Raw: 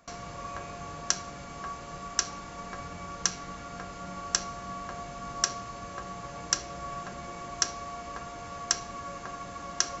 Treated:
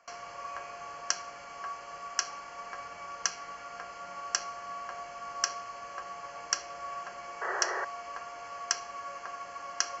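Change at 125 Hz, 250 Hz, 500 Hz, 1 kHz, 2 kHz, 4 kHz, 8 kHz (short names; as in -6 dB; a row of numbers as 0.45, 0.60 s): -19.5 dB, -13.0 dB, -1.5 dB, 0.0 dB, +2.0 dB, -2.5 dB, n/a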